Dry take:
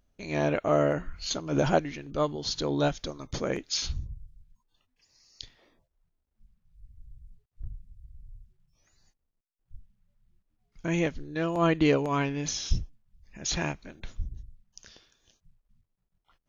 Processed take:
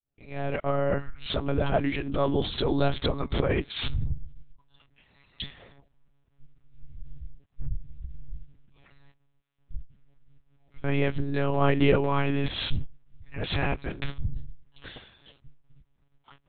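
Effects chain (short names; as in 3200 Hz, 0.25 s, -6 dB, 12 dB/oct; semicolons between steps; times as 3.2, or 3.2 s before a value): opening faded in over 2.62 s; in parallel at +1.5 dB: negative-ratio compressor -35 dBFS, ratio -0.5; on the sum: monotone LPC vocoder at 8 kHz 140 Hz; gain +2 dB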